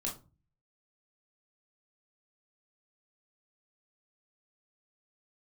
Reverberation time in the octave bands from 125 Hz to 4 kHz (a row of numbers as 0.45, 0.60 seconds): 0.70, 0.50, 0.35, 0.30, 0.20, 0.20 seconds